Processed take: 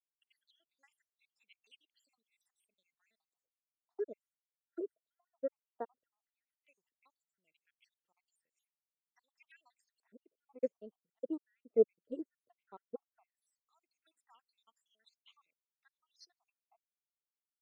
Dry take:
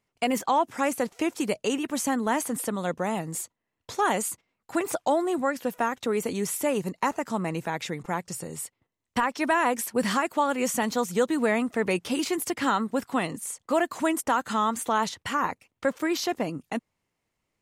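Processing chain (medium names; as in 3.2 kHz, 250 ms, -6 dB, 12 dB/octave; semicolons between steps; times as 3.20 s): random holes in the spectrogram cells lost 76%; LFO band-pass square 0.15 Hz 450–3500 Hz; upward expansion 2.5:1, over -46 dBFS; trim +4 dB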